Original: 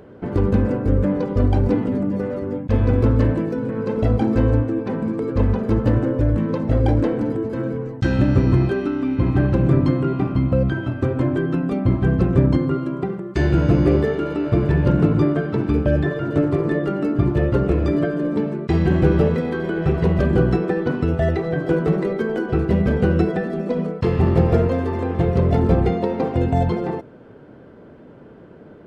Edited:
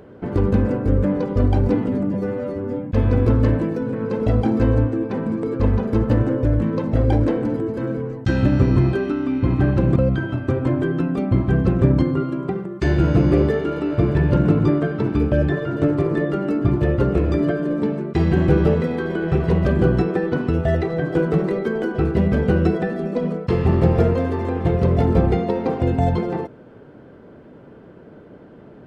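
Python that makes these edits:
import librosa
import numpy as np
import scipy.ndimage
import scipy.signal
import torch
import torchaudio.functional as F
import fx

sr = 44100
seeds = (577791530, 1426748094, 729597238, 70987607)

y = fx.edit(x, sr, fx.stretch_span(start_s=2.14, length_s=0.48, factor=1.5),
    fx.cut(start_s=9.72, length_s=0.78), tone=tone)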